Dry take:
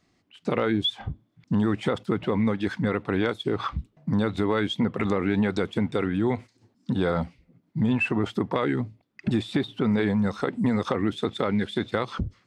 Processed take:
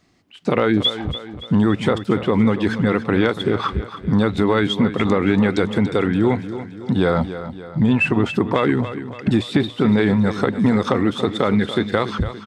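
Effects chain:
repeating echo 285 ms, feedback 50%, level −12 dB
level +7 dB

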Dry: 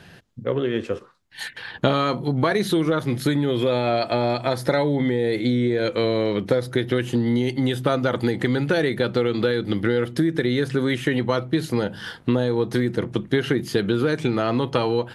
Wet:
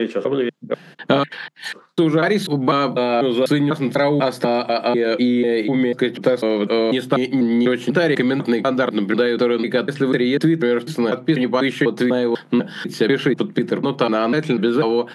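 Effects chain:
slices reordered back to front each 247 ms, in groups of 4
Chebyshev high-pass filter 150 Hz, order 5
high-shelf EQ 6,100 Hz −7.5 dB
level +5 dB

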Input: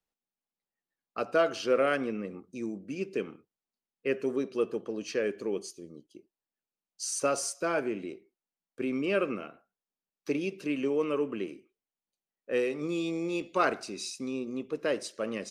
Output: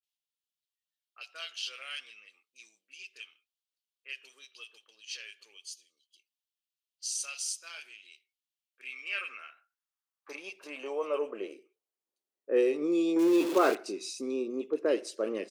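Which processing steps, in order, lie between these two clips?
0:13.16–0:13.72: converter with a step at zero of −29.5 dBFS
multiband delay without the direct sound lows, highs 30 ms, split 1,800 Hz
high-pass filter sweep 3,100 Hz → 350 Hz, 0:08.49–0:12.08
level −2 dB

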